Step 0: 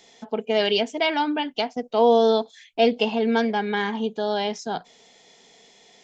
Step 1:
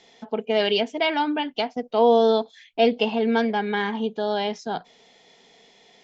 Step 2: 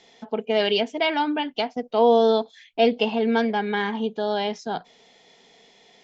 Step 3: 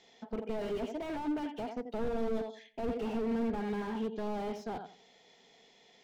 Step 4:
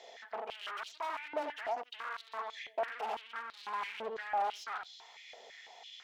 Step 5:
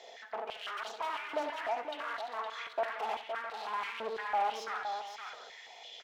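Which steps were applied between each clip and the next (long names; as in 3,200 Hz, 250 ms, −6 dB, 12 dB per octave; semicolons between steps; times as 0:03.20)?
low-pass filter 4,800 Hz 12 dB per octave
no processing that can be heard
feedback echo with a low-pass in the loop 87 ms, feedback 27%, low-pass 1,300 Hz, level −10.5 dB; slew-rate limiting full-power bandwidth 25 Hz; level −7.5 dB
tube saturation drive 42 dB, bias 0.3; high-pass on a step sequencer 6 Hz 580–4,000 Hz; level +6 dB
multi-tap delay 67/179/515/662 ms −13.5/−19.5/−7/−15.5 dB; level +1.5 dB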